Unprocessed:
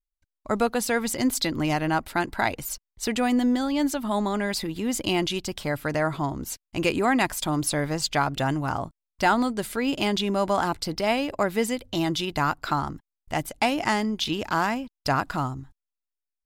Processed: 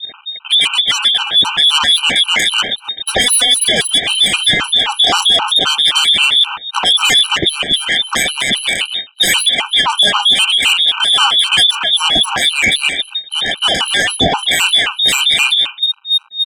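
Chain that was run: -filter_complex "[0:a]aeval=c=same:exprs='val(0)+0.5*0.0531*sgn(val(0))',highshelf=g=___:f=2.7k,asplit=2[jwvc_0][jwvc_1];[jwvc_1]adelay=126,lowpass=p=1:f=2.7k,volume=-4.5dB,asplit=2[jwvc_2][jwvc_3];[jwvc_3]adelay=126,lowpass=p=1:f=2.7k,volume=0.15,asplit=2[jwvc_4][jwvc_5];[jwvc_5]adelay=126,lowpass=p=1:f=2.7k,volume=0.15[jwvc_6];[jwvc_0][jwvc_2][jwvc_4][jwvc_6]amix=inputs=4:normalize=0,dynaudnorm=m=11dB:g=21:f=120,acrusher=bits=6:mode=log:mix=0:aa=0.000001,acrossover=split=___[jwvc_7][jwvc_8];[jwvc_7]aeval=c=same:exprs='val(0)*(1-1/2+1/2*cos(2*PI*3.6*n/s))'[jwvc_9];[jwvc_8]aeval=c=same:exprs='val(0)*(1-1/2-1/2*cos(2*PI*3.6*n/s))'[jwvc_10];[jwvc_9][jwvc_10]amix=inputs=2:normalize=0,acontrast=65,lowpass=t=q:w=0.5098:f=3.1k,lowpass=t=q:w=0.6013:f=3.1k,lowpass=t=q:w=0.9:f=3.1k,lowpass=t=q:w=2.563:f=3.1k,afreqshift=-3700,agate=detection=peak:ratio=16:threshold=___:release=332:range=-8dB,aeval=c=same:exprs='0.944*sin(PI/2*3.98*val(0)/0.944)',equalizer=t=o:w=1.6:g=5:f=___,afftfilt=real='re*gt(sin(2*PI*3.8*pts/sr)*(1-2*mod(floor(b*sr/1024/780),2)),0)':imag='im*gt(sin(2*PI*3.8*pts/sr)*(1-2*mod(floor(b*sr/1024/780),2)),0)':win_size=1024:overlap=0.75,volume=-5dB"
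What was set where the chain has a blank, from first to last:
11, 520, -25dB, 220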